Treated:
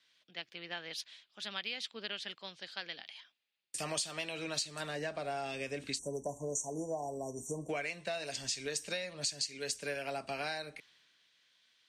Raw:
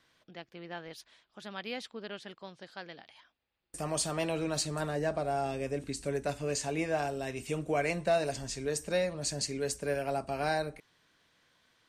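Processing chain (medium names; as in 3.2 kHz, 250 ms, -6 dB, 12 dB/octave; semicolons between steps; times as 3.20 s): frequency weighting D; spectral selection erased 5.99–7.69 s, 1.1–5.6 kHz; peaking EQ 360 Hz -2.5 dB 0.77 oct; compression 16:1, threshold -34 dBFS, peak gain reduction 15 dB; three bands expanded up and down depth 40%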